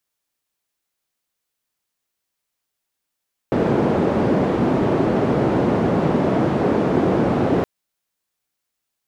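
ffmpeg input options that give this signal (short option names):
-f lavfi -i "anoisesrc=c=white:d=4.12:r=44100:seed=1,highpass=f=140,lowpass=f=400,volume=5.5dB"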